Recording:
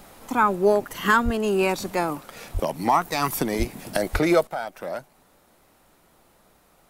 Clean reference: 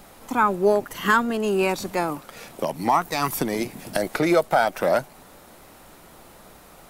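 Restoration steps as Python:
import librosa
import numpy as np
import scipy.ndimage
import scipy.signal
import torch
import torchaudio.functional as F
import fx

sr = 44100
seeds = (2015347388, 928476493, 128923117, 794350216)

y = fx.fix_deplosive(x, sr, at_s=(1.24, 2.53, 3.58, 4.12))
y = fx.fix_level(y, sr, at_s=4.47, step_db=11.0)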